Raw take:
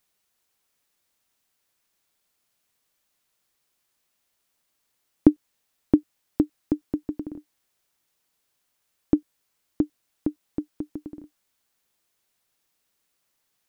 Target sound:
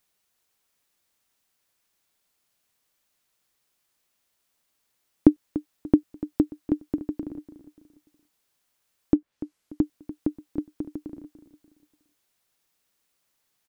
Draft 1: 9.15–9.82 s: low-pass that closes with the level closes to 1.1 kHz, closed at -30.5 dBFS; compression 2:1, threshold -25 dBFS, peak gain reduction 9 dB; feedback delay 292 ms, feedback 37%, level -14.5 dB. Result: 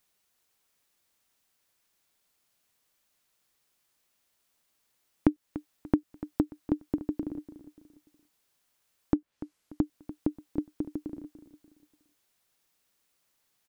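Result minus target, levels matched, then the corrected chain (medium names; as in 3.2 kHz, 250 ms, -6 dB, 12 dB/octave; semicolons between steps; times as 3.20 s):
compression: peak gain reduction +9 dB
9.15–9.82 s: low-pass that closes with the level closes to 1.1 kHz, closed at -30.5 dBFS; feedback delay 292 ms, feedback 37%, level -14.5 dB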